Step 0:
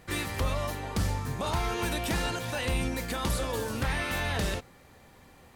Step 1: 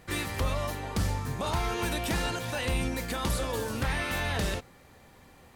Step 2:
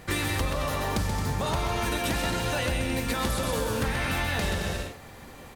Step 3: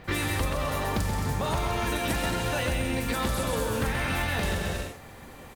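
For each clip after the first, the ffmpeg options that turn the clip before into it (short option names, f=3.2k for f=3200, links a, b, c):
-af anull
-filter_complex "[0:a]asplit=2[a][b];[b]aecho=0:1:130|221|284.7|329.3|360.5:0.631|0.398|0.251|0.158|0.1[c];[a][c]amix=inputs=2:normalize=0,acompressor=threshold=-32dB:ratio=6,volume=7.5dB"
-filter_complex "[0:a]acrossover=split=5000[a][b];[b]adelay=40[c];[a][c]amix=inputs=2:normalize=0,acrusher=bits=7:mode=log:mix=0:aa=0.000001"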